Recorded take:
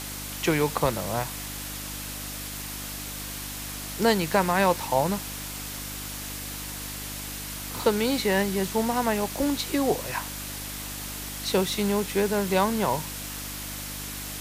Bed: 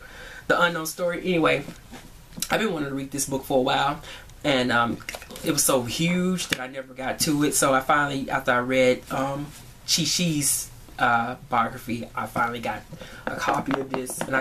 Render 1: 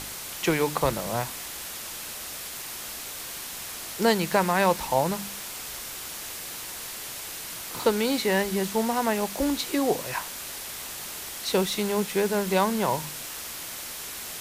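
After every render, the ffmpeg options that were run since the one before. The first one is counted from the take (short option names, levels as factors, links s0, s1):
-af "bandreject=f=50:t=h:w=4,bandreject=f=100:t=h:w=4,bandreject=f=150:t=h:w=4,bandreject=f=200:t=h:w=4,bandreject=f=250:t=h:w=4,bandreject=f=300:t=h:w=4"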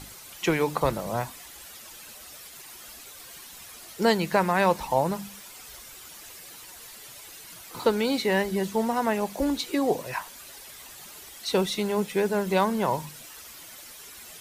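-af "afftdn=nr=11:nf=-37"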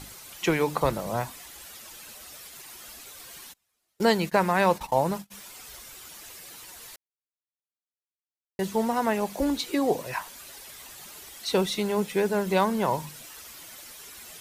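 -filter_complex "[0:a]asplit=3[s0][s1][s2];[s0]afade=t=out:st=3.52:d=0.02[s3];[s1]agate=range=0.0251:threshold=0.0158:ratio=16:release=100:detection=peak,afade=t=in:st=3.52:d=0.02,afade=t=out:st=5.3:d=0.02[s4];[s2]afade=t=in:st=5.3:d=0.02[s5];[s3][s4][s5]amix=inputs=3:normalize=0,asplit=3[s6][s7][s8];[s6]atrim=end=6.96,asetpts=PTS-STARTPTS,afade=t=out:st=6.956:d=0.004:c=hsin[s9];[s7]atrim=start=6.96:end=8.59,asetpts=PTS-STARTPTS,volume=0[s10];[s8]atrim=start=8.59,asetpts=PTS-STARTPTS,afade=t=in:d=0.004:c=hsin[s11];[s9][s10][s11]concat=n=3:v=0:a=1"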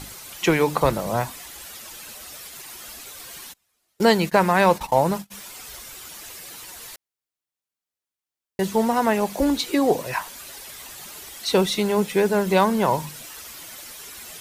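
-af "acontrast=33"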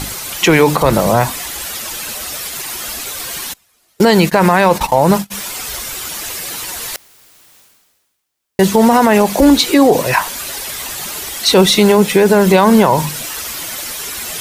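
-af "areverse,acompressor=mode=upward:threshold=0.0141:ratio=2.5,areverse,alimiter=level_in=5.31:limit=0.891:release=50:level=0:latency=1"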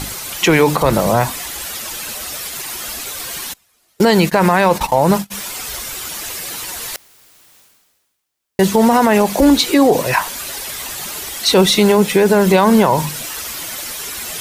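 -af "volume=0.794"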